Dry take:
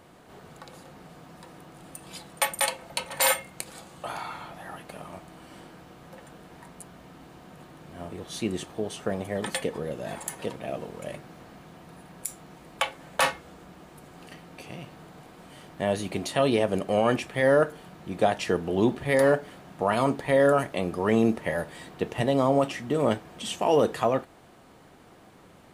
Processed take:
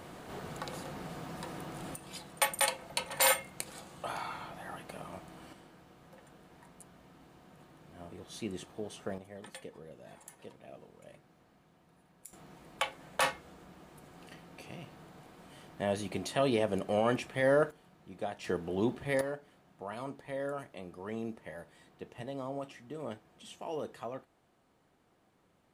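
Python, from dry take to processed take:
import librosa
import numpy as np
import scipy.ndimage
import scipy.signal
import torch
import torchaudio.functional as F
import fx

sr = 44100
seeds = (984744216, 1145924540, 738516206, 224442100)

y = fx.gain(x, sr, db=fx.steps((0.0, 5.0), (1.95, -3.5), (5.53, -9.5), (9.18, -17.5), (12.33, -6.0), (17.71, -15.0), (18.44, -8.0), (19.21, -17.0)))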